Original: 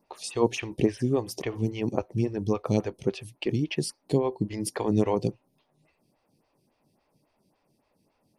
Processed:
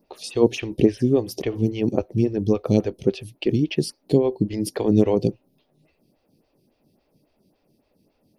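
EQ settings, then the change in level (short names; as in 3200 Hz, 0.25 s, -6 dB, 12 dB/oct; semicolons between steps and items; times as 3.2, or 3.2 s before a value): graphic EQ 125/1000/2000/8000 Hz -4/-11/-6/-11 dB; +8.5 dB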